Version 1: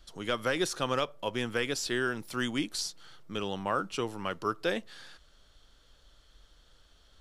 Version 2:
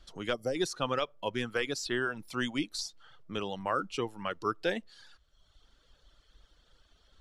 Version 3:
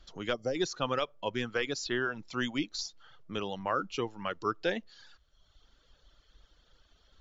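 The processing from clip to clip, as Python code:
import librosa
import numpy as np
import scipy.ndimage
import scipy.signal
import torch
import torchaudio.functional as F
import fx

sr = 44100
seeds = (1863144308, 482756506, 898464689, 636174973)

y1 = fx.high_shelf(x, sr, hz=9800.0, db=-11.5)
y1 = fx.dereverb_blind(y1, sr, rt60_s=1.0)
y1 = fx.spec_box(y1, sr, start_s=0.33, length_s=0.22, low_hz=790.0, high_hz=4400.0, gain_db=-18)
y2 = fx.brickwall_lowpass(y1, sr, high_hz=7400.0)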